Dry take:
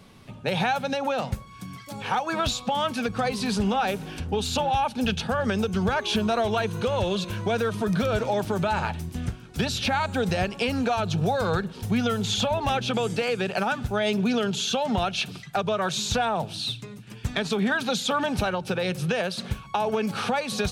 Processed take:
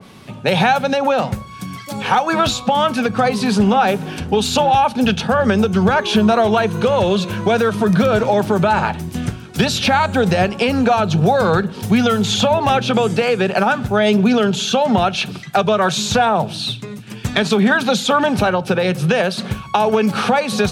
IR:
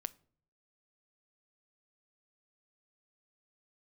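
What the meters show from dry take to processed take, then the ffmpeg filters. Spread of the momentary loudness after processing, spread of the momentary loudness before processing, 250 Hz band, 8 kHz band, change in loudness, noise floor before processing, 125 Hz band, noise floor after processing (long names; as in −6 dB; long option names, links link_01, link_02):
8 LU, 6 LU, +10.5 dB, +7.0 dB, +10.0 dB, −45 dBFS, +8.5 dB, −34 dBFS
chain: -filter_complex "[0:a]asplit=2[link_01][link_02];[link_02]highpass=frequency=62:width=0.5412,highpass=frequency=62:width=1.3066[link_03];[1:a]atrim=start_sample=2205,asetrate=57330,aresample=44100[link_04];[link_03][link_04]afir=irnorm=-1:irlink=0,volume=13.5dB[link_05];[link_01][link_05]amix=inputs=2:normalize=0,adynamicequalizer=threshold=0.0316:dfrequency=2200:dqfactor=0.7:tfrequency=2200:tqfactor=0.7:attack=5:release=100:ratio=0.375:range=2.5:mode=cutabove:tftype=highshelf,volume=-1dB"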